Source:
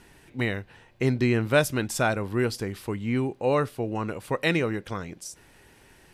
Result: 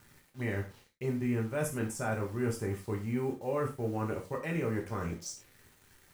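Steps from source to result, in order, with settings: G.711 law mismatch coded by A; reverse; compressor 5:1, threshold -34 dBFS, peak gain reduction 17 dB; reverse; envelope phaser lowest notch 510 Hz, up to 4200 Hz, full sweep at -35.5 dBFS; requantised 10-bit, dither none; non-linear reverb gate 0.13 s falling, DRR 0 dB

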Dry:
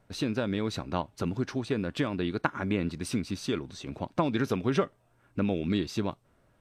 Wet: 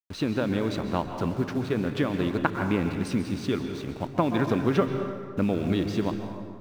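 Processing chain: level-crossing sampler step -42.5 dBFS; high shelf 6200 Hz -12 dB; plate-style reverb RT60 1.9 s, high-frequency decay 0.6×, pre-delay 0.115 s, DRR 6 dB; gain +3 dB

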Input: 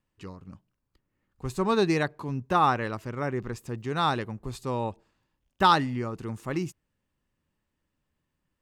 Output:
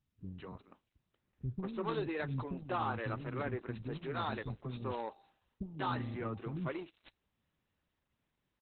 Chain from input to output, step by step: HPF 52 Hz 12 dB/oct; 4.33–6.38 de-hum 395.6 Hz, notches 3; compressor 8:1, threshold -27 dBFS, peak gain reduction 12.5 dB; soft clip -26 dBFS, distortion -15 dB; flange 0.99 Hz, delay 2.6 ms, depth 2.9 ms, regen -81%; three bands offset in time lows, mids, highs 0.19/0.38 s, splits 290/5300 Hz; careless resampling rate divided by 4×, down none, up zero stuff; gain +3.5 dB; Opus 8 kbps 48000 Hz

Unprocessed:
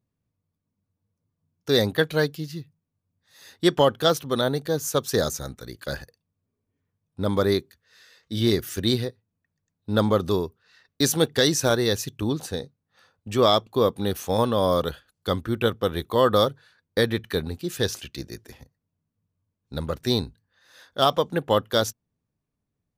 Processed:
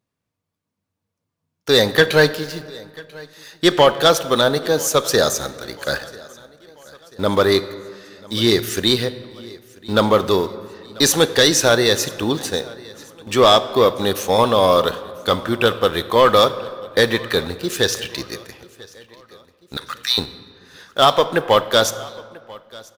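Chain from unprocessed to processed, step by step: 1.91–2.39 sample leveller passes 1; 19.77–20.18 HPF 1300 Hz 24 dB/oct; overdrive pedal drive 13 dB, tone 6300 Hz, clips at -6.5 dBFS; in parallel at -4 dB: sample gate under -32 dBFS; on the sum: feedback echo 0.99 s, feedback 48%, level -23 dB; on a send at -13 dB: reverb RT60 2.0 s, pre-delay 20 ms

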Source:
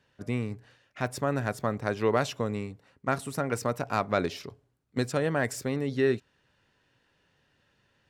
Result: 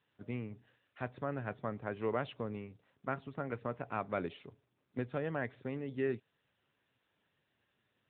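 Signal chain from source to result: gain -9 dB; AMR-NB 10.2 kbps 8000 Hz

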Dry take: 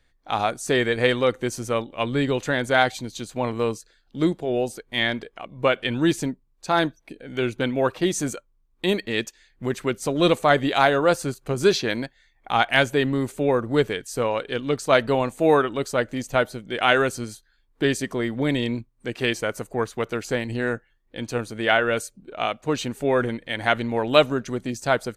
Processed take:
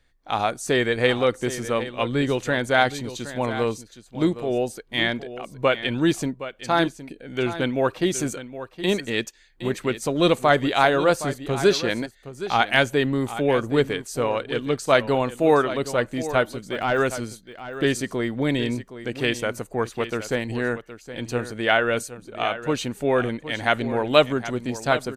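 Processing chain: 16.52–17 de-esser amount 95%; on a send: echo 0.767 s -13 dB

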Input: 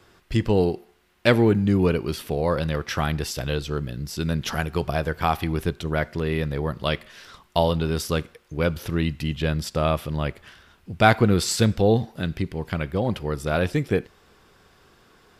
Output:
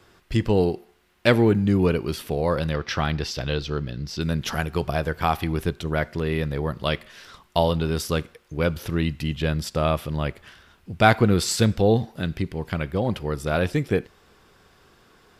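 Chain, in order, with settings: 2.73–4.21 resonant high shelf 6800 Hz -10.5 dB, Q 1.5

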